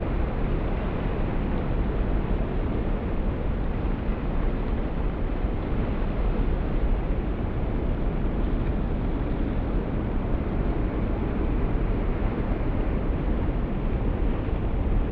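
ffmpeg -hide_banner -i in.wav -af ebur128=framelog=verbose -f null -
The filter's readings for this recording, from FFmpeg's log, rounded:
Integrated loudness:
  I:         -28.5 LUFS
  Threshold: -38.5 LUFS
Loudness range:
  LRA:         1.2 LU
  Threshold: -48.5 LUFS
  LRA low:   -29.1 LUFS
  LRA high:  -28.0 LUFS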